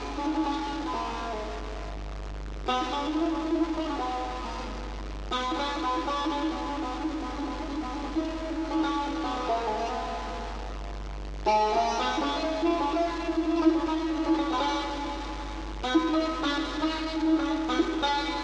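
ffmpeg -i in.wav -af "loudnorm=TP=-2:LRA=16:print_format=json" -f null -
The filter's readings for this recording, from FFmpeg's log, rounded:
"input_i" : "-29.1",
"input_tp" : "-11.2",
"input_lra" : "4.0",
"input_thresh" : "-39.1",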